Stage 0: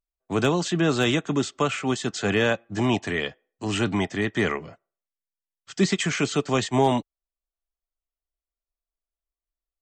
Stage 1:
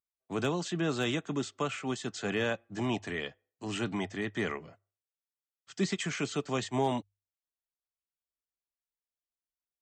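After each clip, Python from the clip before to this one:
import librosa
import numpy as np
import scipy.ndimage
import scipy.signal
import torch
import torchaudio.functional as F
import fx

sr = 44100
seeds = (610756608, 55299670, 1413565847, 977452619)

y = scipy.signal.sosfilt(scipy.signal.butter(2, 61.0, 'highpass', fs=sr, output='sos'), x)
y = fx.hum_notches(y, sr, base_hz=50, count=2)
y = y * 10.0 ** (-9.0 / 20.0)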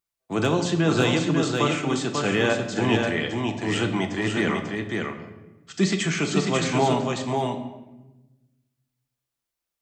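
y = x + 10.0 ** (-4.0 / 20.0) * np.pad(x, (int(543 * sr / 1000.0), 0))[:len(x)]
y = fx.room_shoebox(y, sr, seeds[0], volume_m3=540.0, walls='mixed', distance_m=0.75)
y = y * 10.0 ** (7.5 / 20.0)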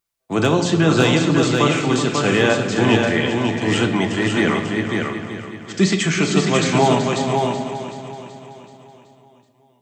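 y = fx.echo_feedback(x, sr, ms=378, feedback_pct=53, wet_db=-10.5)
y = y * 10.0 ** (5.5 / 20.0)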